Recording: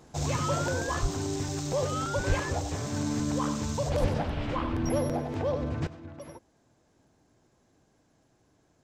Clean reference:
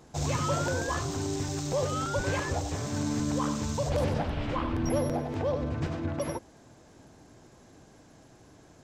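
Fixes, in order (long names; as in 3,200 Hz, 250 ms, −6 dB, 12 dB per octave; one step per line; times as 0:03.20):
high-pass at the plosives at 0:01.01/0:02.28/0:04.00
level correction +12 dB, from 0:05.87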